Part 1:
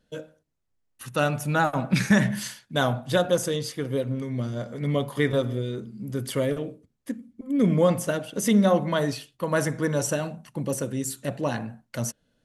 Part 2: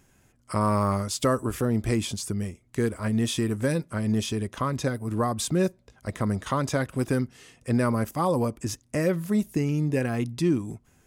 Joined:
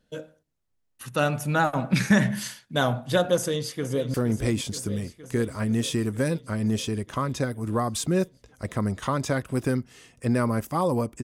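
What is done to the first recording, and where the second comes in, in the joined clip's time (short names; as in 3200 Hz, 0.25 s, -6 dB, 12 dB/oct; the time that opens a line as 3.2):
part 1
3.35–4.14 echo throw 0.47 s, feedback 75%, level -11.5 dB
4.14 switch to part 2 from 1.58 s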